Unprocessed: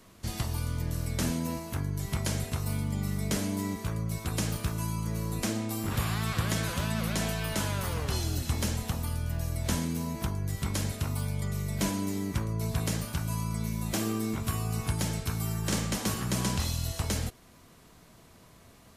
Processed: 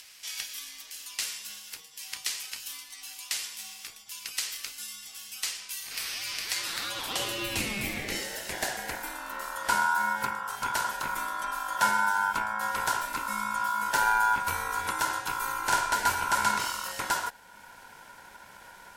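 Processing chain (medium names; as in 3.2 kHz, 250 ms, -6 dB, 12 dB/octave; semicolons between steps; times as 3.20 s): high-pass sweep 3.6 kHz -> 230 Hz, 6.43–9.45 s; ring modulator 1.2 kHz; upward compressor, threshold -47 dBFS; trim +4.5 dB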